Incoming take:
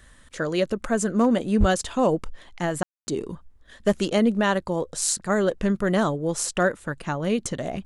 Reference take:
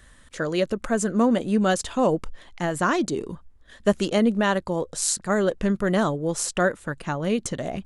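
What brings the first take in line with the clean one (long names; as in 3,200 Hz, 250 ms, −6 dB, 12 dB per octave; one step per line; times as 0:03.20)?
clipped peaks rebuilt −11.5 dBFS
0:01.59–0:01.71: high-pass filter 140 Hz 24 dB per octave
ambience match 0:02.83–0:03.07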